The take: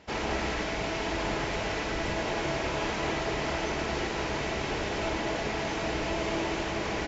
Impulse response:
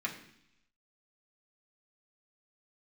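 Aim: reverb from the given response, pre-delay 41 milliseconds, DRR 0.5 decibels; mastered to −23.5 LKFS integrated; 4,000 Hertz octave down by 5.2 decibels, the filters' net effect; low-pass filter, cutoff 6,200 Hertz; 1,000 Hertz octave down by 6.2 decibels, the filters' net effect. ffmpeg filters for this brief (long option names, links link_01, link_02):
-filter_complex "[0:a]lowpass=6200,equalizer=frequency=1000:width_type=o:gain=-8,equalizer=frequency=4000:width_type=o:gain=-6,asplit=2[link_01][link_02];[1:a]atrim=start_sample=2205,adelay=41[link_03];[link_02][link_03]afir=irnorm=-1:irlink=0,volume=-4.5dB[link_04];[link_01][link_04]amix=inputs=2:normalize=0,volume=8dB"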